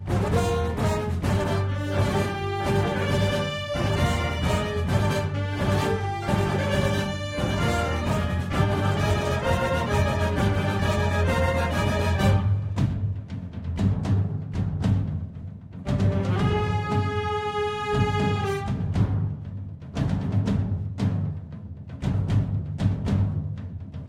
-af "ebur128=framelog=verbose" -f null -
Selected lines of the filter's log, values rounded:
Integrated loudness:
  I:         -25.2 LUFS
  Threshold: -35.4 LUFS
Loudness range:
  LRA:         3.7 LU
  Threshold: -45.3 LUFS
  LRA low:   -27.5 LUFS
  LRA high:  -23.8 LUFS